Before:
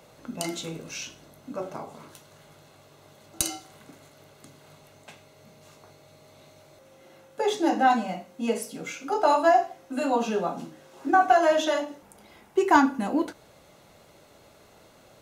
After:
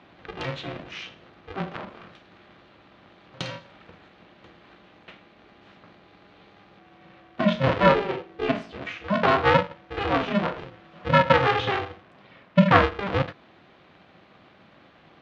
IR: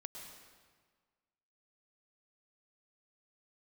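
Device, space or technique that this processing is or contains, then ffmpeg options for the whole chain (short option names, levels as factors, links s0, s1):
ring modulator pedal into a guitar cabinet: -filter_complex "[0:a]aeval=exprs='val(0)*sgn(sin(2*PI*200*n/s))':c=same,highpass=100,equalizer=f=180:t=q:w=4:g=8,equalizer=f=420:t=q:w=4:g=-7,equalizer=f=870:t=q:w=4:g=-6,lowpass=f=3500:w=0.5412,lowpass=f=3500:w=1.3066,asettb=1/sr,asplit=3[s0][s1][s2];[s0]atrim=end=7.864[s3];[s1]atrim=start=7.86:end=8.48,asetpts=PTS-STARTPTS,afade=t=in:d=0.004:c=qsin,afade=t=out:st=0.616:d=0.004:c=qsin,equalizer=f=390:w=2:g=9.5[s4];[s2]atrim=start=8.476[s5];[s3][s4]acrossfade=d=0.004:c1=hsin:c2=qsin[s6];[s6][s5]acrossfade=d=0.004:c1=qsin:c2=hsin,volume=1.41"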